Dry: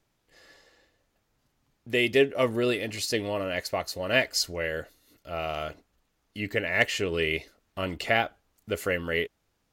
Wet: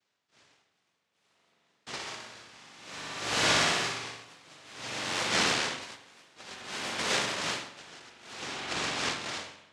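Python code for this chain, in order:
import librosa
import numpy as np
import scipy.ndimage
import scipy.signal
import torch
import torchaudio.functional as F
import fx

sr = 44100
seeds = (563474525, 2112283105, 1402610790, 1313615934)

y = fx.spec_trails(x, sr, decay_s=1.31)
y = fx.high_shelf(y, sr, hz=3000.0, db=11.0)
y = fx.over_compress(y, sr, threshold_db=-29.0, ratio=-1.0)
y = fx.power_curve(y, sr, exponent=1.4)
y = fx.noise_vocoder(y, sr, seeds[0], bands=1)
y = fx.echo_pitch(y, sr, ms=445, semitones=3, count=2, db_per_echo=-3.0)
y = fx.air_absorb(y, sr, metres=98.0)
y = fx.room_flutter(y, sr, wall_m=10.4, rt60_s=1.2, at=(1.9, 4.25))
y = fx.rev_spring(y, sr, rt60_s=1.6, pass_ms=(43,), chirp_ms=25, drr_db=4.0)
y = y * 10.0 ** (-24 * (0.5 - 0.5 * np.cos(2.0 * np.pi * 0.56 * np.arange(len(y)) / sr)) / 20.0)
y = F.gain(torch.from_numpy(y), 5.0).numpy()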